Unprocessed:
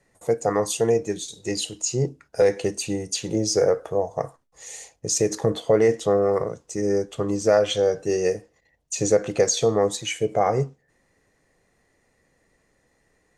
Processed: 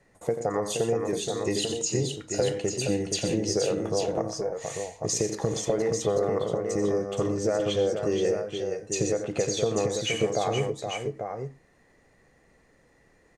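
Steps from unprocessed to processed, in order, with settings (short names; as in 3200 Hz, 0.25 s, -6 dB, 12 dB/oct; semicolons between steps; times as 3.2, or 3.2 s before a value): high shelf 4900 Hz -8 dB; compressor, threshold -27 dBFS, peak gain reduction 13.5 dB; tapped delay 87/121/472/843 ms -11/-13.5/-6.5/-6.5 dB; gain +3 dB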